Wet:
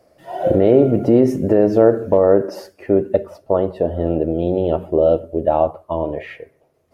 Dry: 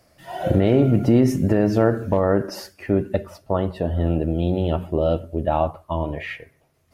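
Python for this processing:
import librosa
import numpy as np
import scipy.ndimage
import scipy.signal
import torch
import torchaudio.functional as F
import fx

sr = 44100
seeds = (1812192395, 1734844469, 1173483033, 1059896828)

y = fx.peak_eq(x, sr, hz=480.0, db=14.0, octaves=1.8)
y = y * 10.0 ** (-5.5 / 20.0)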